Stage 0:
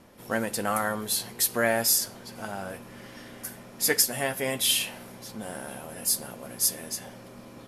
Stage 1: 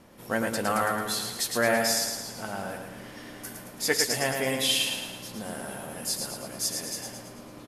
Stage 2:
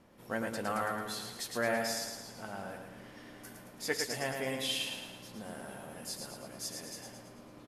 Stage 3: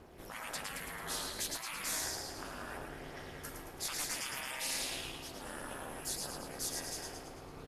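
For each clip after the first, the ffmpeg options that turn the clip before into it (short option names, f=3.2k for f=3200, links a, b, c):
-filter_complex "[0:a]acrossover=split=8000[a][b];[b]acompressor=threshold=-37dB:ratio=4:attack=1:release=60[c];[a][c]amix=inputs=2:normalize=0,asplit=2[d][e];[e]aecho=0:1:110|220|330|440|550|660|770:0.562|0.292|0.152|0.0791|0.0411|0.0214|0.0111[f];[d][f]amix=inputs=2:normalize=0"
-af "highshelf=f=5.1k:g=-6,volume=-7.5dB"
-af "aphaser=in_gain=1:out_gain=1:delay=1.9:decay=0.25:speed=0.63:type=triangular,afftfilt=real='re*lt(hypot(re,im),0.0251)':imag='im*lt(hypot(re,im),0.0251)':win_size=1024:overlap=0.75,aeval=exprs='val(0)*sin(2*PI*150*n/s)':c=same,volume=7dB"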